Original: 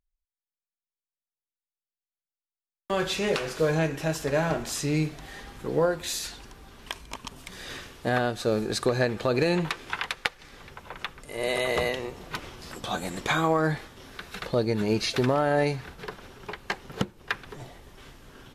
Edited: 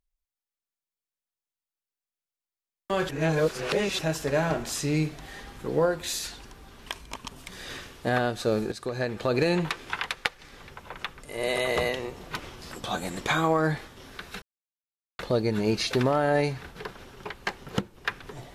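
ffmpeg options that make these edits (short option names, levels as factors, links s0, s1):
-filter_complex "[0:a]asplit=5[s0][s1][s2][s3][s4];[s0]atrim=end=3.092[s5];[s1]atrim=start=3.088:end=3.992,asetpts=PTS-STARTPTS,areverse[s6];[s2]atrim=start=3.988:end=8.72,asetpts=PTS-STARTPTS,afade=t=out:st=4.728:d=0.004:c=hsin:silence=0.199526[s7];[s3]atrim=start=8.72:end=14.42,asetpts=PTS-STARTPTS,afade=t=in:d=0.63:silence=0.199526,afade=t=out:st=5.696:d=0.004:c=hsin,apad=pad_dur=0.77[s8];[s4]atrim=start=14.42,asetpts=PTS-STARTPTS,afade=t=in:d=0.004:c=hsin[s9];[s5][s6]acrossfade=d=0.004:c1=hsin:c2=hsin[s10];[s7][s8][s9]concat=n=3:v=0:a=1[s11];[s10][s11]acrossfade=d=0.004:c1=hsin:c2=hsin"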